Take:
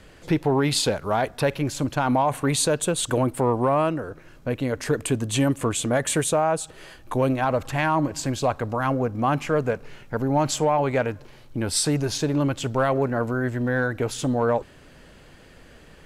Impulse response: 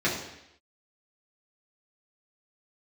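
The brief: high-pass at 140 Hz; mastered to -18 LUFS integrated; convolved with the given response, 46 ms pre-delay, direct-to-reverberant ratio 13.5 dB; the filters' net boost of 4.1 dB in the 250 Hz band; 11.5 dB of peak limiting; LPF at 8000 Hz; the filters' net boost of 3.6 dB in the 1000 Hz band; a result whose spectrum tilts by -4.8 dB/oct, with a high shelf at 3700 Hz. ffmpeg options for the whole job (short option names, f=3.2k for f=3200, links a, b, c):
-filter_complex "[0:a]highpass=140,lowpass=8k,equalizer=f=250:t=o:g=5,equalizer=f=1k:t=o:g=4.5,highshelf=f=3.7k:g=-3.5,alimiter=limit=-17.5dB:level=0:latency=1,asplit=2[a][b];[1:a]atrim=start_sample=2205,adelay=46[c];[b][c]afir=irnorm=-1:irlink=0,volume=-26.5dB[d];[a][d]amix=inputs=2:normalize=0,volume=9.5dB"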